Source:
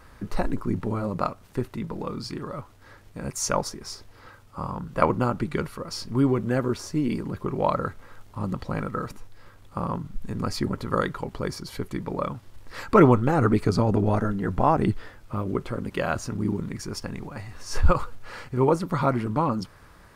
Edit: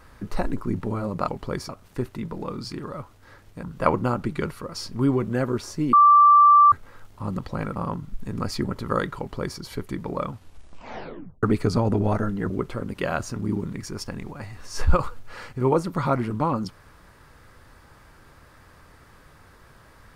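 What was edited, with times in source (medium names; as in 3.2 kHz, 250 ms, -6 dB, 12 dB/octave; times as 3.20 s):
3.22–4.79 s: delete
7.09–7.88 s: bleep 1.17 kHz -10 dBFS
8.92–9.78 s: delete
11.20–11.61 s: copy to 1.28 s
12.32 s: tape stop 1.13 s
14.52–15.46 s: delete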